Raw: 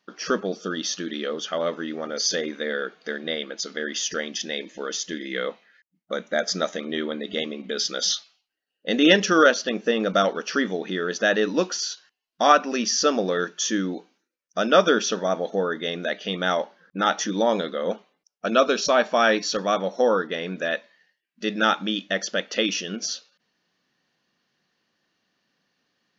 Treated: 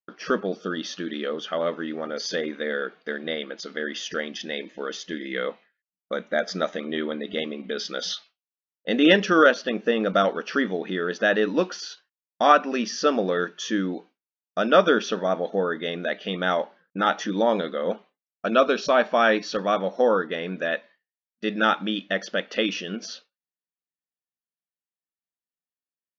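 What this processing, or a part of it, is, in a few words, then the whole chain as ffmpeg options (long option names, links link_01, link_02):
hearing-loss simulation: -af "lowpass=3400,agate=range=-33dB:threshold=-42dB:ratio=3:detection=peak"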